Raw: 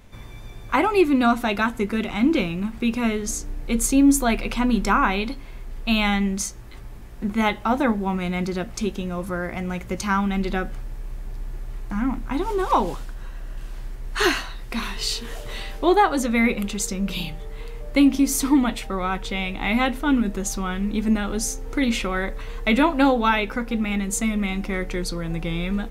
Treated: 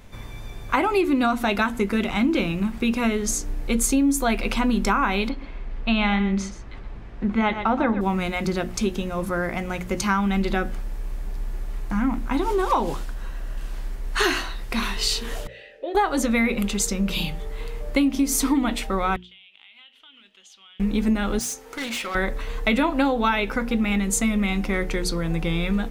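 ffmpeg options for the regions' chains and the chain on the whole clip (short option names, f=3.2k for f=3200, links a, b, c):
-filter_complex "[0:a]asettb=1/sr,asplit=3[a][b][c];[a]atrim=end=5.294[d];[b]atrim=start=5.29:end=8.01,asetpts=PTS-STARTPTS,afade=t=in:d=0.004:c=qsin,afade=t=out:st=2.716:d=0.004:c=qsin,lowpass=3.2k,aecho=1:1:123:0.251,atrim=end_sample=119952[e];[c]atrim=start=8.006[f];[d][e]acrossfade=d=0.004:c1=hsin:c2=qsin[g];[g][f]acrossfade=d=0.004:c1=qsin:c2=hsin,asettb=1/sr,asplit=3[h][i][j];[h]atrim=end=15.474[k];[i]atrim=start=15.47:end=15.95,asetpts=PTS-STARTPTS,afade=t=in:d=0.004:c=qsin,afade=t=out:st=0.476:d=0.004:c=qsin,asplit=3[l][m][n];[l]bandpass=f=530:t=q:w=8,volume=0dB[o];[m]bandpass=f=1.84k:t=q:w=8,volume=-6dB[p];[n]bandpass=f=2.48k:t=q:w=8,volume=-9dB[q];[o][p][q]amix=inputs=3:normalize=0,acompressor=mode=upward:threshold=-54dB:ratio=2.5:attack=3.2:release=140:knee=2.83:detection=peak[r];[j]atrim=start=15.946[s];[k][r]acrossfade=d=0.004:c1=hsin:c2=qsin[t];[t][s]acrossfade=d=0.004:c1=qsin:c2=hsin,asettb=1/sr,asplit=3[u][v][w];[u]atrim=end=19.164[x];[v]atrim=start=19.16:end=20.8,asetpts=PTS-STARTPTS,afade=t=in:d=0.004:c=qsin,afade=t=out:st=1.636:d=0.004:c=qsin,bandpass=f=3.1k:t=q:w=9.2,acompressor=threshold=-48dB:ratio=8:attack=3.2:release=140:knee=1:detection=peak[y];[w]atrim=start=20.796[z];[x][y]acrossfade=d=0.004:c1=hsin:c2=qsin[aa];[aa][z]acrossfade=d=0.004:c1=qsin:c2=hsin,asettb=1/sr,asplit=3[ab][ac][ad];[ab]atrim=end=21.394[ae];[ac]atrim=start=21.39:end=22.15,asetpts=PTS-STARTPTS,afade=t=in:d=0.004:c=qsin,afade=t=out:st=0.756:d=0.004:c=qsin,highpass=f=790:p=1,asoftclip=type=hard:threshold=-29.5dB[af];[ad]atrim=start=22.146[ag];[ae][af]acrossfade=d=0.004:c1=hsin:c2=qsin[ah];[ah][ag]acrossfade=d=0.004:c1=qsin:c2=hsin,bandreject=f=60:t=h:w=6,bandreject=f=120:t=h:w=6,bandreject=f=180:t=h:w=6,bandreject=f=240:t=h:w=6,bandreject=f=300:t=h:w=6,bandreject=f=360:t=h:w=6,acompressor=threshold=-20dB:ratio=6,volume=3dB"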